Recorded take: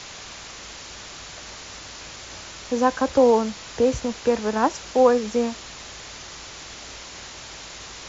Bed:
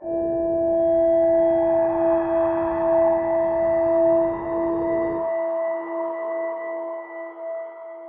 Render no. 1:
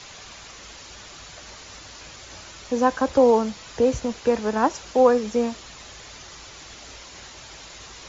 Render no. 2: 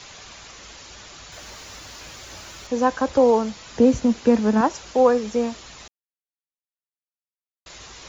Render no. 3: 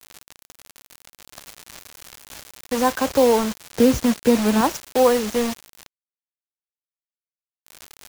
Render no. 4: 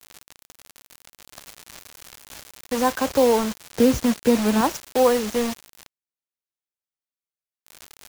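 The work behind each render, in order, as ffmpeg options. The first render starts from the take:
ffmpeg -i in.wav -af "afftdn=noise_reduction=6:noise_floor=-40" out.wav
ffmpeg -i in.wav -filter_complex "[0:a]asettb=1/sr,asplit=3[link_01][link_02][link_03];[link_01]atrim=end=1.324[link_04];[link_02]atrim=start=1.32:end=2.67,asetpts=PTS-STARTPTS,afade=type=in:duration=0.004:curve=qsin,afade=type=out:start_time=1.346:duration=0.004:curve=qsin,aeval=exprs='val(0)+0.5*0.00473*sgn(val(0))':channel_layout=same[link_05];[link_03]atrim=start=2.666[link_06];[link_04][link_05]acrossfade=duration=0.004:curve1=hsin:curve2=qsin[link_07];[link_07][link_06]acrossfade=duration=0.004:curve1=qsin:curve2=hsin,asettb=1/sr,asplit=3[link_08][link_09][link_10];[link_08]atrim=end=3.724[link_11];[link_09]atrim=start=3.72:end=4.61,asetpts=PTS-STARTPTS,afade=type=in:duration=0.004:curve=qsin,afade=type=out:start_time=0.886:duration=0.004:curve=qsin,equalizer=frequency=230:width_type=o:width=0.76:gain=10.5[link_12];[link_10]atrim=start=4.606[link_13];[link_11][link_12]acrossfade=duration=0.004:curve1=hsin:curve2=qsin[link_14];[link_14][link_13]acrossfade=duration=0.004:curve1=qsin:curve2=hsin,asplit=3[link_15][link_16][link_17];[link_15]atrim=end=5.88,asetpts=PTS-STARTPTS,afade=type=out:start_time=5.876:duration=0.004:curve=hsin[link_18];[link_16]atrim=start=5.88:end=7.66,asetpts=PTS-STARTPTS,volume=0[link_19];[link_17]atrim=start=7.66,asetpts=PTS-STARTPTS,afade=type=in:duration=0.004:curve=hsin[link_20];[link_18][link_19][link_20]concat=n=3:v=0:a=1" out.wav
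ffmpeg -i in.wav -filter_complex "[0:a]asplit=2[link_01][link_02];[link_02]aeval=exprs='(mod(11.2*val(0)+1,2)-1)/11.2':channel_layout=same,volume=-6dB[link_03];[link_01][link_03]amix=inputs=2:normalize=0,acrusher=bits=4:mix=0:aa=0.000001" out.wav
ffmpeg -i in.wav -af "volume=-1.5dB" out.wav

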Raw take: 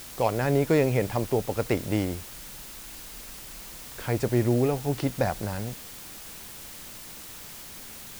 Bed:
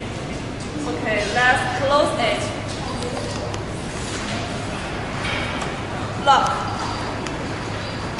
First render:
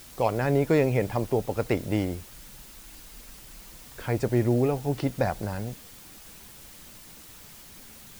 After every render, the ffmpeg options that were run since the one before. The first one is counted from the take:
ffmpeg -i in.wav -af "afftdn=noise_reduction=6:noise_floor=-43" out.wav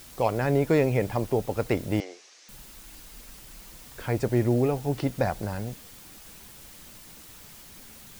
ffmpeg -i in.wav -filter_complex "[0:a]asettb=1/sr,asplit=3[link_01][link_02][link_03];[link_01]atrim=end=2.004[link_04];[link_02]atrim=start=2:end=2.49,asetpts=PTS-STARTPTS,afade=type=in:duration=0.004:curve=qsin,afade=type=out:start_time=0.486:duration=0.004:curve=qsin,highpass=frequency=460:width=0.5412,highpass=frequency=460:width=1.3066,equalizer=frequency=580:width_type=q:width=4:gain=-7,equalizer=frequency=920:width_type=q:width=4:gain=-8,equalizer=frequency=1400:width_type=q:width=4:gain=-7,equalizer=frequency=3200:width_type=q:width=4:gain=-4,equalizer=frequency=6000:width_type=q:width=4:gain=6,lowpass=frequency=6300:width=0.5412,lowpass=frequency=6300:width=1.3066[link_05];[link_03]atrim=start=2.486[link_06];[link_04][link_05]acrossfade=duration=0.004:curve1=hsin:curve2=qsin[link_07];[link_07][link_06]acrossfade=duration=0.004:curve1=qsin:curve2=hsin" out.wav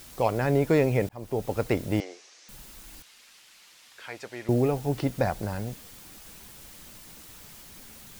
ffmpeg -i in.wav -filter_complex "[0:a]asettb=1/sr,asplit=3[link_01][link_02][link_03];[link_01]atrim=end=3.024[link_04];[link_02]atrim=start=3.02:end=4.49,asetpts=PTS-STARTPTS,afade=type=in:duration=0.004:curve=qsin,afade=type=out:start_time=1.466:duration=0.004:curve=qsin,bandpass=frequency=3000:width_type=q:width=0.72[link_05];[link_03]atrim=start=4.486[link_06];[link_04][link_05]acrossfade=duration=0.004:curve1=hsin:curve2=qsin[link_07];[link_07][link_06]acrossfade=duration=0.004:curve1=qsin:curve2=hsin,asplit=2[link_08][link_09];[link_08]atrim=end=1.09,asetpts=PTS-STARTPTS,afade=type=out:start_time=1.086:duration=0.004:curve=hsin[link_10];[link_09]atrim=start=1.09,asetpts=PTS-STARTPTS,afade=type=in:duration=0.41[link_11];[link_10][link_11]concat=n=2:v=0:a=1" out.wav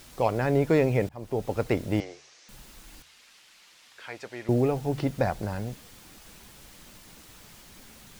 ffmpeg -i in.wav -af "highshelf=frequency=8800:gain=-7.5,bandreject=frequency=72.85:width_type=h:width=4,bandreject=frequency=145.7:width_type=h:width=4" out.wav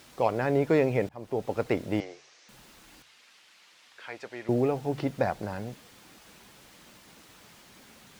ffmpeg -i in.wav -af "highpass=frequency=190:poles=1,highshelf=frequency=5700:gain=-7.5" out.wav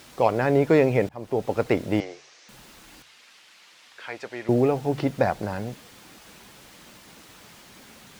ffmpeg -i in.wav -af "volume=5dB" out.wav

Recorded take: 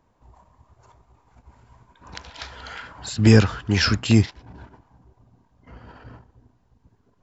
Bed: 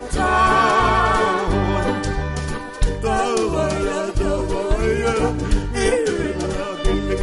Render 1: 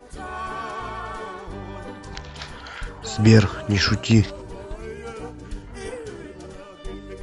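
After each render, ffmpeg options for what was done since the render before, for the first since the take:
ffmpeg -i in.wav -i bed.wav -filter_complex "[1:a]volume=-16dB[link_01];[0:a][link_01]amix=inputs=2:normalize=0" out.wav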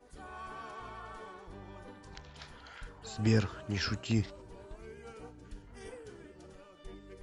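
ffmpeg -i in.wav -af "volume=-14dB" out.wav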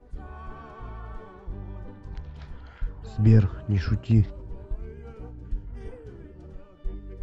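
ffmpeg -i in.wav -af "aemphasis=mode=reproduction:type=riaa" out.wav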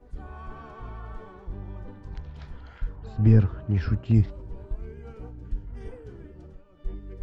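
ffmpeg -i in.wav -filter_complex "[0:a]asettb=1/sr,asplit=3[link_01][link_02][link_03];[link_01]atrim=end=2.964[link_04];[link_02]atrim=start=2.96:end=4.14,asetpts=PTS-STARTPTS,afade=type=in:duration=0.004:curve=qsin,afade=type=out:start_time=1.176:duration=0.004:curve=qsin,lowpass=frequency=2400:poles=1[link_05];[link_03]atrim=start=4.136[link_06];[link_04][link_05]acrossfade=duration=0.004:curve1=hsin:curve2=qsin[link_07];[link_07][link_06]acrossfade=duration=0.004:curve1=qsin:curve2=hsin,asplit=2[link_08][link_09];[link_08]atrim=end=6.64,asetpts=PTS-STARTPTS,afade=type=out:start_time=6.39:duration=0.25:silence=0.375837[link_10];[link_09]atrim=start=6.64,asetpts=PTS-STARTPTS,afade=type=in:duration=0.25:silence=0.375837[link_11];[link_10][link_11]concat=n=2:v=0:a=1" out.wav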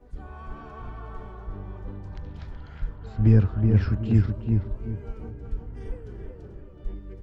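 ffmpeg -i in.wav -filter_complex "[0:a]asplit=2[link_01][link_02];[link_02]adelay=374,lowpass=frequency=1700:poles=1,volume=-3.5dB,asplit=2[link_03][link_04];[link_04]adelay=374,lowpass=frequency=1700:poles=1,volume=0.32,asplit=2[link_05][link_06];[link_06]adelay=374,lowpass=frequency=1700:poles=1,volume=0.32,asplit=2[link_07][link_08];[link_08]adelay=374,lowpass=frequency=1700:poles=1,volume=0.32[link_09];[link_01][link_03][link_05][link_07][link_09]amix=inputs=5:normalize=0" out.wav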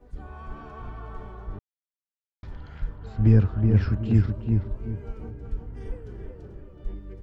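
ffmpeg -i in.wav -filter_complex "[0:a]asplit=3[link_01][link_02][link_03];[link_01]atrim=end=1.59,asetpts=PTS-STARTPTS,afade=type=out:start_time=1.586:duration=0.004:curve=hsin[link_04];[link_02]atrim=start=1.59:end=2.43,asetpts=PTS-STARTPTS,volume=0[link_05];[link_03]atrim=start=2.43,asetpts=PTS-STARTPTS,afade=type=in:duration=0.004:curve=hsin[link_06];[link_04][link_05][link_06]concat=n=3:v=0:a=1" out.wav

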